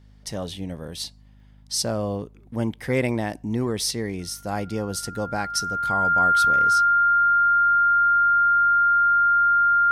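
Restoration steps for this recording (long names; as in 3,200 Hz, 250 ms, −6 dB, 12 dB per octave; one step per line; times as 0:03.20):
hum removal 51.1 Hz, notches 5
notch filter 1,400 Hz, Q 30
repair the gap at 0:01.40/0:03.09, 1.1 ms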